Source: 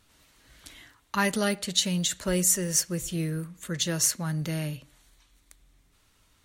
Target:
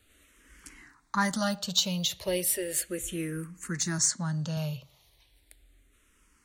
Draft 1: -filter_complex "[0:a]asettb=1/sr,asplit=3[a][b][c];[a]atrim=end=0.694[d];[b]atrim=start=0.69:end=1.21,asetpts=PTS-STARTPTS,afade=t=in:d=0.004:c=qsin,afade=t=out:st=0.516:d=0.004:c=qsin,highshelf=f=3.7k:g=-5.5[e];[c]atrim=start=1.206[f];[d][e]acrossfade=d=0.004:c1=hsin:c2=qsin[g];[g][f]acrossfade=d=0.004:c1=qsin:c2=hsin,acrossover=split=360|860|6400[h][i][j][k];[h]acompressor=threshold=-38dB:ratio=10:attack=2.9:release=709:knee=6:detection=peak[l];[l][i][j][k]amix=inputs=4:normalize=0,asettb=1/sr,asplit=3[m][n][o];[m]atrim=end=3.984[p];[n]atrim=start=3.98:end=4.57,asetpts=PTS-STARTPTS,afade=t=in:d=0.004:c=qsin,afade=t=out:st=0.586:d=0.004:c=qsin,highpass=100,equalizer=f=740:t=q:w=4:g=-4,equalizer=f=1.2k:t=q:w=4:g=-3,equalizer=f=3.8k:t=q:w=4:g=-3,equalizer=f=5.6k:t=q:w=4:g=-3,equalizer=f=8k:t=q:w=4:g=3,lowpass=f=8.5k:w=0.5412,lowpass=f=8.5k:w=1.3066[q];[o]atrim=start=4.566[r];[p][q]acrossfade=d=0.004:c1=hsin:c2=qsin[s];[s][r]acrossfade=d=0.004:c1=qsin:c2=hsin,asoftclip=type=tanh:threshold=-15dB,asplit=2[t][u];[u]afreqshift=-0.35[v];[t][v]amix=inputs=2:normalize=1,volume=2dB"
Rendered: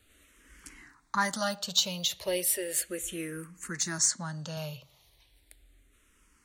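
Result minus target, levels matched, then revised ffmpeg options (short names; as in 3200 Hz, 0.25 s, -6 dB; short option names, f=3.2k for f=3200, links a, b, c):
compressor: peak gain reduction +9.5 dB
-filter_complex "[0:a]asettb=1/sr,asplit=3[a][b][c];[a]atrim=end=0.694[d];[b]atrim=start=0.69:end=1.21,asetpts=PTS-STARTPTS,afade=t=in:d=0.004:c=qsin,afade=t=out:st=0.516:d=0.004:c=qsin,highshelf=f=3.7k:g=-5.5[e];[c]atrim=start=1.206[f];[d][e]acrossfade=d=0.004:c1=hsin:c2=qsin[g];[g][f]acrossfade=d=0.004:c1=qsin:c2=hsin,acrossover=split=360|860|6400[h][i][j][k];[h]acompressor=threshold=-27dB:ratio=10:attack=2.9:release=709:knee=6:detection=peak[l];[l][i][j][k]amix=inputs=4:normalize=0,asettb=1/sr,asplit=3[m][n][o];[m]atrim=end=3.984[p];[n]atrim=start=3.98:end=4.57,asetpts=PTS-STARTPTS,afade=t=in:d=0.004:c=qsin,afade=t=out:st=0.586:d=0.004:c=qsin,highpass=100,equalizer=f=740:t=q:w=4:g=-4,equalizer=f=1.2k:t=q:w=4:g=-3,equalizer=f=3.8k:t=q:w=4:g=-3,equalizer=f=5.6k:t=q:w=4:g=-3,equalizer=f=8k:t=q:w=4:g=3,lowpass=f=8.5k:w=0.5412,lowpass=f=8.5k:w=1.3066[q];[o]atrim=start=4.566[r];[p][q]acrossfade=d=0.004:c1=hsin:c2=qsin[s];[s][r]acrossfade=d=0.004:c1=qsin:c2=hsin,asoftclip=type=tanh:threshold=-15dB,asplit=2[t][u];[u]afreqshift=-0.35[v];[t][v]amix=inputs=2:normalize=1,volume=2dB"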